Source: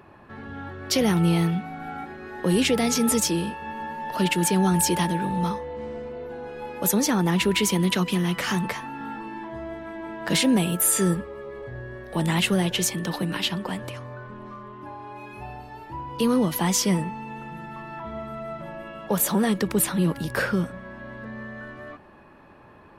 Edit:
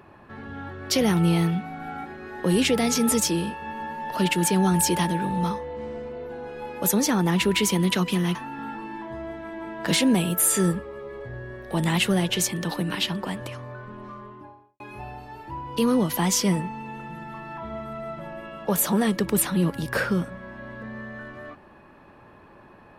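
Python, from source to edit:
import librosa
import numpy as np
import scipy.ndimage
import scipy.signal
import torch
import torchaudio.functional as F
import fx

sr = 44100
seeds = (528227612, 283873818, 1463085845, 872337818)

y = fx.studio_fade_out(x, sr, start_s=14.58, length_s=0.64)
y = fx.edit(y, sr, fx.cut(start_s=8.35, length_s=0.42), tone=tone)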